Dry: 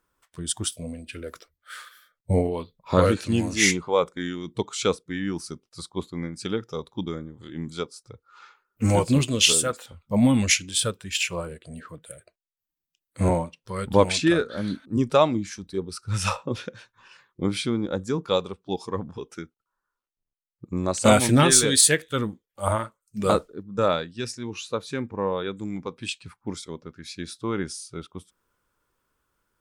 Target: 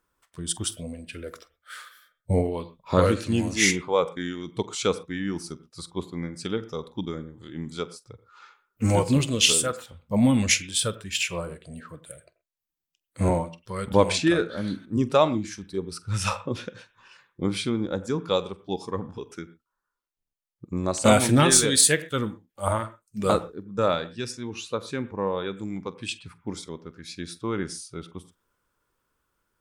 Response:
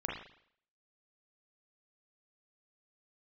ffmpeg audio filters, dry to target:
-filter_complex "[0:a]asplit=2[a][b];[1:a]atrim=start_sample=2205,atrim=end_sample=3969,adelay=46[c];[b][c]afir=irnorm=-1:irlink=0,volume=-18dB[d];[a][d]amix=inputs=2:normalize=0,volume=-1dB"

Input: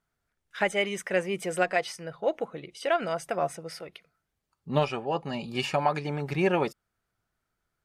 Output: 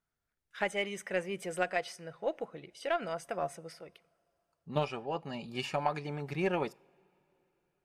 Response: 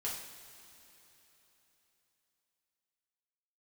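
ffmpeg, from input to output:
-filter_complex "[0:a]aeval=exprs='0.316*(cos(1*acos(clip(val(0)/0.316,-1,1)))-cos(1*PI/2))+0.0251*(cos(3*acos(clip(val(0)/0.316,-1,1)))-cos(3*PI/2))+0.002*(cos(6*acos(clip(val(0)/0.316,-1,1)))-cos(6*PI/2))':c=same,asettb=1/sr,asplit=3[a][b][c];[a]atrim=end=3.724[d];[b]atrim=start=3.72:end=4.76,asetpts=PTS-STARTPTS,afade=t=in:d=0.004:c=qsin,afade=t=out:st=1.036:d=0.004:c=qsin,acrossover=split=1100|5200[e][f][g];[e]acompressor=threshold=-35dB:ratio=4[h];[f]acompressor=threshold=-53dB:ratio=4[i];[g]acompressor=threshold=-55dB:ratio=4[j];[h][i][j]amix=inputs=3:normalize=0[k];[c]atrim=start=4.756[l];[d][k]acrossfade=d=0.004:c1=hsin:c2=qsin[m];[m][l]acrossfade=d=0.004:c1=qsin:c2=hsin,asplit=2[n][o];[1:a]atrim=start_sample=2205[p];[o][p]afir=irnorm=-1:irlink=0,volume=-24dB[q];[n][q]amix=inputs=2:normalize=0,volume=-5dB"

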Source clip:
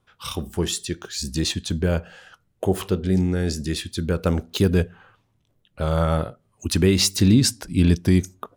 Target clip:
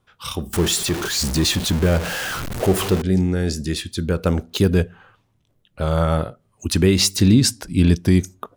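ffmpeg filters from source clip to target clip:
-filter_complex "[0:a]asettb=1/sr,asplit=3[a][b][c];[a]atrim=end=0.534[d];[b]atrim=start=0.53:end=3.02,asetpts=PTS-STARTPTS,afade=t=in:d=0.004:c=qsin,afade=t=out:st=2.486:d=0.004:c=qsin,aeval=exprs='val(0)+0.5*0.0708*sgn(val(0))':c=same[e];[c]atrim=start=3.016[f];[d][e]acrossfade=d=0.004:c1=hsin:c2=qsin[g];[g][f]acrossfade=d=0.004:c1=qsin:c2=hsin,volume=2dB"

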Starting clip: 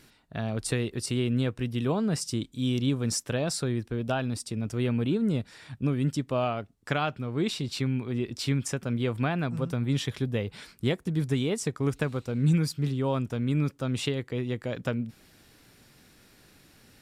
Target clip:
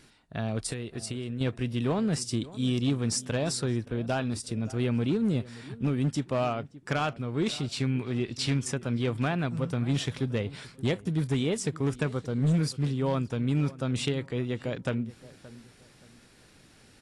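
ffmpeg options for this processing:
-filter_complex "[0:a]asettb=1/sr,asplit=3[a][b][c];[a]atrim=end=0.664[d];[b]atrim=start=0.66:end=1.41,asetpts=PTS-STARTPTS,afade=t=in:d=0.004:c=qsin,afade=t=out:st=0.746:d=0.004:c=qsin,acompressor=threshold=-32dB:ratio=6[e];[c]atrim=start=1.406[f];[d][e]acrossfade=d=0.004:c1=hsin:c2=qsin[g];[g][f]acrossfade=d=0.004:c1=qsin:c2=hsin,asettb=1/sr,asplit=3[h][i][j];[h]atrim=end=7.834[k];[i]atrim=start=7.83:end=8.56,asetpts=PTS-STARTPTS,afade=t=in:d=0.004:c=qsin,afade=t=out:st=0.726:d=0.004:c=qsin,equalizer=f=2.9k:t=o:w=2.7:g=3[l];[j]atrim=start=8.556[m];[k][l]acrossfade=d=0.004:c1=hsin:c2=qsin[n];[n][m]acrossfade=d=0.004:c1=qsin:c2=hsin,asettb=1/sr,asplit=3[o][p][q];[o]atrim=end=12.094[r];[p]atrim=start=12.09:end=12.61,asetpts=PTS-STARTPTS,afade=t=in:d=0.004:c=qsin,afade=t=out:st=0.516:d=0.004:c=qsin,bandreject=f=2.5k:w=6[s];[q]atrim=start=12.606[t];[r][s]acrossfade=d=0.004:c1=hsin:c2=qsin[u];[u][t]acrossfade=d=0.004:c1=qsin:c2=hsin,asoftclip=type=hard:threshold=-20.5dB,asplit=2[v][w];[w]adelay=573,lowpass=f=1.6k:p=1,volume=-18dB,asplit=2[x][y];[y]adelay=573,lowpass=f=1.6k:p=1,volume=0.32,asplit=2[z][aa];[aa]adelay=573,lowpass=f=1.6k:p=1,volume=0.32[ab];[v][x][z][ab]amix=inputs=4:normalize=0" -ar 24000 -c:a aac -b:a 48k

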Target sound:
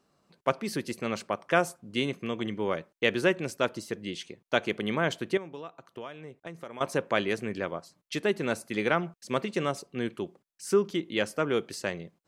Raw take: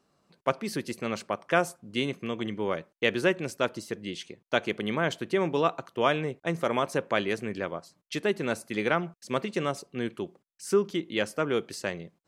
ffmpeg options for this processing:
-filter_complex "[0:a]asettb=1/sr,asplit=3[a][b][c];[a]atrim=end=5.374[d];[b]atrim=start=5.37:end=6.81,asetpts=PTS-STARTPTS,afade=t=in:d=0.004:c=qsin,afade=t=out:st=1.436:d=0.004:c=qsin,acompressor=threshold=-40dB:ratio=5[e];[c]atrim=start=6.806[f];[d][e]acrossfade=d=0.004:c1=hsin:c2=qsin[g];[g][f]acrossfade=d=0.004:c1=qsin:c2=hsin"

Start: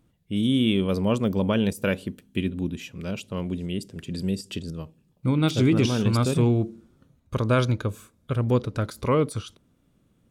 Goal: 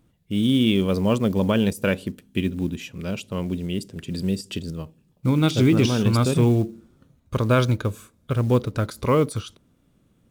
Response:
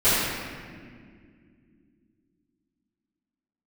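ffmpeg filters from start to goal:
-af "acrusher=bits=8:mode=log:mix=0:aa=0.000001,volume=2.5dB"

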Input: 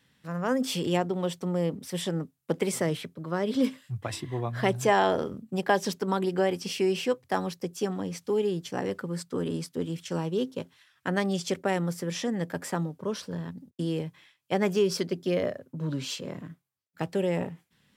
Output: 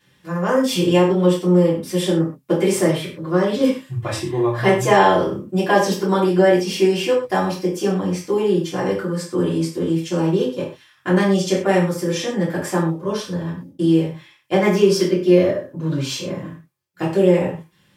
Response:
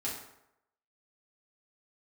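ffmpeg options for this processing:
-filter_complex "[1:a]atrim=start_sample=2205,afade=t=out:st=0.23:d=0.01,atrim=end_sample=10584,asetrate=57330,aresample=44100[a];[0:a][a]afir=irnorm=-1:irlink=0,volume=8.5dB"

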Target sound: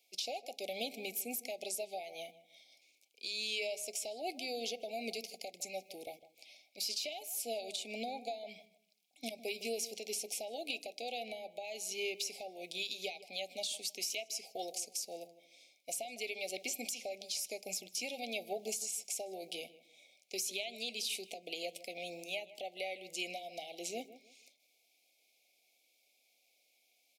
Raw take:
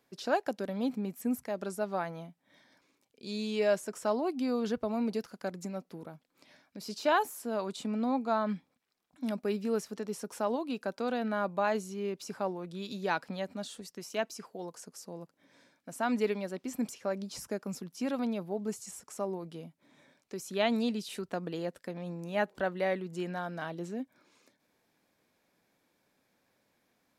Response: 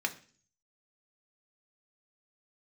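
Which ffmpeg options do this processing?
-filter_complex "[0:a]highpass=840,agate=range=-9dB:threshold=-58dB:ratio=16:detection=peak,tiltshelf=f=1.1k:g=-3.5,acompressor=threshold=-44dB:ratio=6,alimiter=level_in=14dB:limit=-24dB:level=0:latency=1:release=258,volume=-14dB,asuperstop=centerf=1300:order=20:qfactor=0.94,asplit=2[a][b];[b]adelay=156,lowpass=f=1.6k:p=1,volume=-15dB,asplit=2[c][d];[d]adelay=156,lowpass=f=1.6k:p=1,volume=0.27,asplit=2[e][f];[f]adelay=156,lowpass=f=1.6k:p=1,volume=0.27[g];[a][c][e][g]amix=inputs=4:normalize=0,asplit=2[h][i];[1:a]atrim=start_sample=2205,lowshelf=f=250:g=12[j];[i][j]afir=irnorm=-1:irlink=0,volume=-14.5dB[k];[h][k]amix=inputs=2:normalize=0,volume=10.5dB"

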